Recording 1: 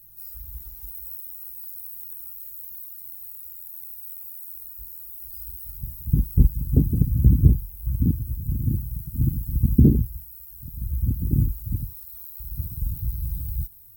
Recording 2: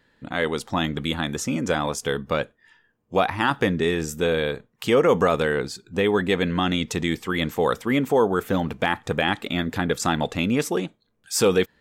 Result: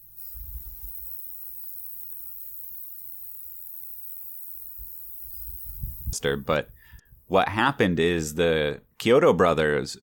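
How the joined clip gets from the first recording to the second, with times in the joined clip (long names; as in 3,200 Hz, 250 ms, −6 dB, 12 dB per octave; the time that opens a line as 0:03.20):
recording 1
0:05.76–0:06.13: delay throw 430 ms, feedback 70%, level −14 dB
0:06.13: continue with recording 2 from 0:01.95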